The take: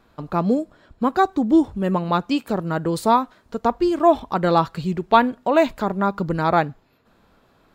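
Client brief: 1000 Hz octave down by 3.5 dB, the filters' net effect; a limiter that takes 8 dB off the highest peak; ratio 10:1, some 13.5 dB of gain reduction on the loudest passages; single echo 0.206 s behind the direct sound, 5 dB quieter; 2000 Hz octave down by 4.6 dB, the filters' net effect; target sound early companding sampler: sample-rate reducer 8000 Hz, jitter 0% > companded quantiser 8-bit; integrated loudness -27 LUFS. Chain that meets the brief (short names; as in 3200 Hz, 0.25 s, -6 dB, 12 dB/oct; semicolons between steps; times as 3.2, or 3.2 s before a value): bell 1000 Hz -3.5 dB; bell 2000 Hz -5 dB; compressor 10:1, threshold -25 dBFS; limiter -22.5 dBFS; echo 0.206 s -5 dB; sample-rate reducer 8000 Hz, jitter 0%; companded quantiser 8-bit; gain +5 dB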